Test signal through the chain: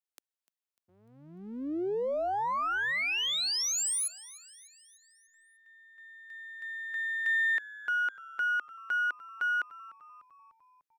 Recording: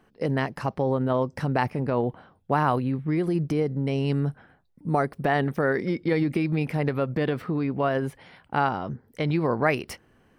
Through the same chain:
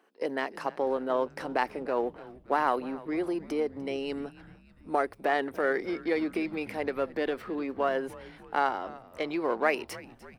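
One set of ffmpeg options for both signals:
-filter_complex "[0:a]aeval=exprs='if(lt(val(0),0),0.708*val(0),val(0))':c=same,highpass=f=300:w=0.5412,highpass=f=300:w=1.3066,asplit=6[a][b][c][d][e][f];[b]adelay=298,afreqshift=-110,volume=-19dB[g];[c]adelay=596,afreqshift=-220,volume=-24.2dB[h];[d]adelay=894,afreqshift=-330,volume=-29.4dB[i];[e]adelay=1192,afreqshift=-440,volume=-34.6dB[j];[f]adelay=1490,afreqshift=-550,volume=-39.8dB[k];[a][g][h][i][j][k]amix=inputs=6:normalize=0,volume=-1.5dB"

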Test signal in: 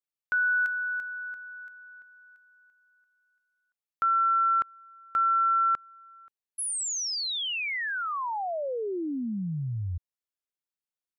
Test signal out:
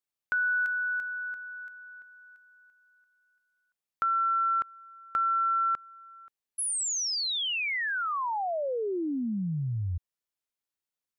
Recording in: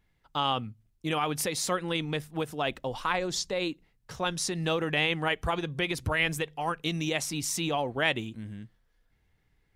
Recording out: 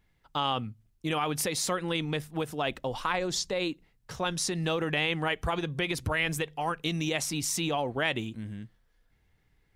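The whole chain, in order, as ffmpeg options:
-af "acompressor=threshold=-27dB:ratio=6:attack=13:release=73:knee=6:detection=peak,volume=1.5dB"

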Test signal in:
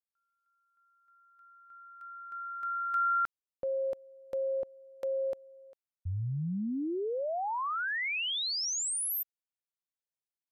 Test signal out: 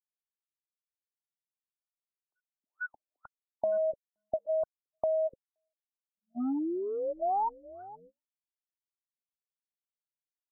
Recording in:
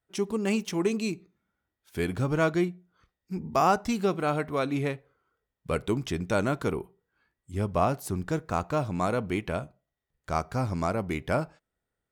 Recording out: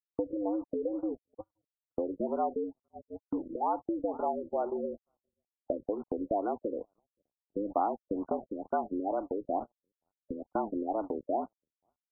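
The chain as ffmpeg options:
-filter_complex "[0:a]acrossover=split=690[a][b];[a]acontrast=67[c];[c][b]amix=inputs=2:normalize=0,highpass=f=180:t=q:w=0.5412,highpass=f=180:t=q:w=1.307,lowpass=f=2.1k:t=q:w=0.5176,lowpass=f=2.1k:t=q:w=0.7071,lowpass=f=2.1k:t=q:w=1.932,afreqshift=98,asplit=2[d][e];[e]aecho=0:1:523|1046|1569:0.112|0.0348|0.0108[f];[d][f]amix=inputs=2:normalize=0,acrusher=bits=5:mix=0:aa=0.5,acompressor=threshold=-30dB:ratio=6:attack=17:release=385:knee=1:detection=peak,agate=range=-40dB:threshold=-32dB:ratio=16:release=248:detection=rms,aecho=1:1:1.2:0.42,afftfilt=real='re*lt(b*sr/1024,540*pow(1500/540,0.5+0.5*sin(2*PI*2.2*pts/sr)))':imag='im*lt(b*sr/1024,540*pow(1500/540,0.5+0.5*sin(2*PI*2.2*pts/sr)))':win_size=1024:overlap=0.75,volume=2.5dB"

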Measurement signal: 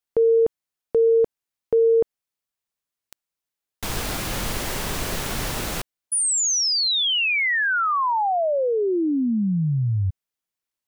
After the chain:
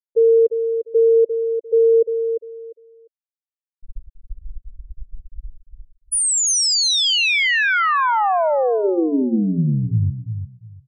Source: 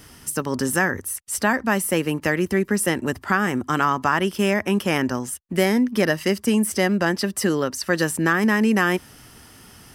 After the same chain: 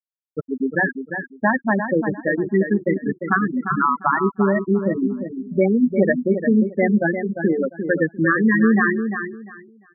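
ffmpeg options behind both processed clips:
-filter_complex "[0:a]bandreject=f=60:t=h:w=6,bandreject=f=120:t=h:w=6,bandreject=f=180:t=h:w=6,bandreject=f=240:t=h:w=6,bandreject=f=300:t=h:w=6,bandreject=f=360:t=h:w=6,bandreject=f=420:t=h:w=6,acrusher=bits=3:mode=log:mix=0:aa=0.000001,afftfilt=real='re*gte(hypot(re,im),0.398)':imag='im*gte(hypot(re,im),0.398)':win_size=1024:overlap=0.75,asplit=2[a][b];[b]aecho=0:1:349|698|1047:0.398|0.0836|0.0176[c];[a][c]amix=inputs=2:normalize=0,volume=3.5dB"

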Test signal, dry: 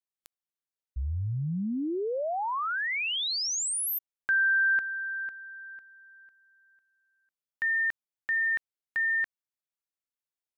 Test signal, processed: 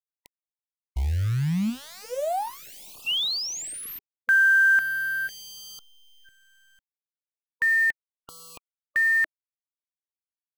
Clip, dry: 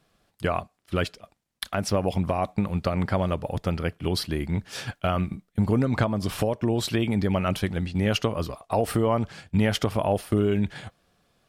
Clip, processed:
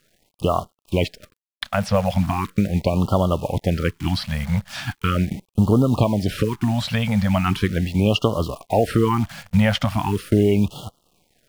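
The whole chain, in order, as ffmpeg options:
-filter_complex "[0:a]acrusher=bits=8:dc=4:mix=0:aa=0.000001,acrossover=split=4300[a][b];[b]acompressor=threshold=-45dB:ratio=4:attack=1:release=60[c];[a][c]amix=inputs=2:normalize=0,afftfilt=real='re*(1-between(b*sr/1024,320*pow(2000/320,0.5+0.5*sin(2*PI*0.39*pts/sr))/1.41,320*pow(2000/320,0.5+0.5*sin(2*PI*0.39*pts/sr))*1.41))':imag='im*(1-between(b*sr/1024,320*pow(2000/320,0.5+0.5*sin(2*PI*0.39*pts/sr))/1.41,320*pow(2000/320,0.5+0.5*sin(2*PI*0.39*pts/sr))*1.41))':win_size=1024:overlap=0.75,volume=6dB"

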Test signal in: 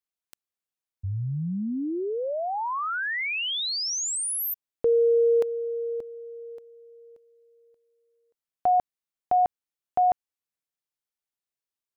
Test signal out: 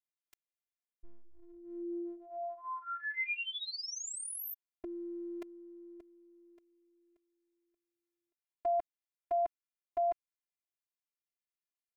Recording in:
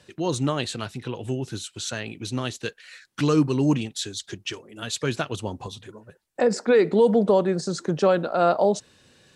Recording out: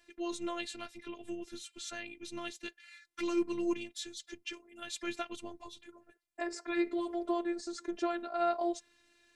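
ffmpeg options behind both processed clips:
-af "equalizer=f=2.2k:w=2.3:g=7,afftfilt=real='hypot(re,im)*cos(PI*b)':imag='0':win_size=512:overlap=0.75,volume=-9dB"

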